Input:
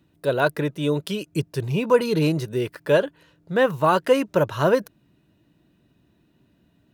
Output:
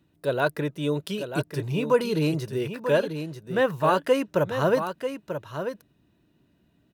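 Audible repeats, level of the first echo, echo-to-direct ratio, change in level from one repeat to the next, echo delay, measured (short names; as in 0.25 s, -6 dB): 1, -8.5 dB, -8.5 dB, no steady repeat, 0.94 s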